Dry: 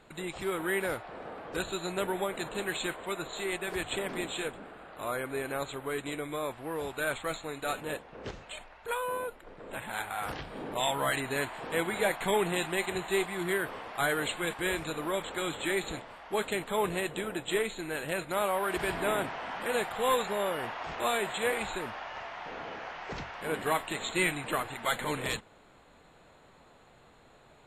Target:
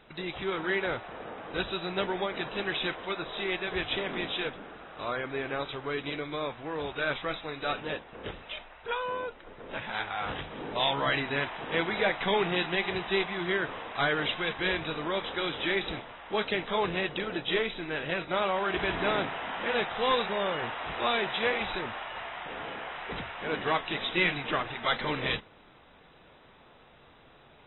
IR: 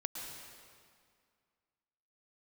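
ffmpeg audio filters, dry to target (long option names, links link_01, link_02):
-af "aresample=11025,aresample=44100,crystalizer=i=2.5:c=0" -ar 24000 -c:a aac -b:a 16k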